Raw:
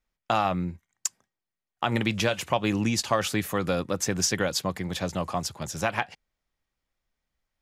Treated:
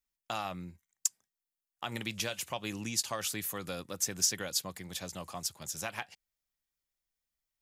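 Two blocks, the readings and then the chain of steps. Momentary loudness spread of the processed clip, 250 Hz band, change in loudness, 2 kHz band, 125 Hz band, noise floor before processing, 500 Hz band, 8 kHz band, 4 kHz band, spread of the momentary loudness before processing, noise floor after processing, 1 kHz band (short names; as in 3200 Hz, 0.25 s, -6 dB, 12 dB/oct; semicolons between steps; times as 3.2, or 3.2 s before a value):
12 LU, -14.0 dB, -7.0 dB, -10.0 dB, -14.0 dB, under -85 dBFS, -13.5 dB, -1.5 dB, -5.0 dB, 8 LU, under -85 dBFS, -12.5 dB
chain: pre-emphasis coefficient 0.8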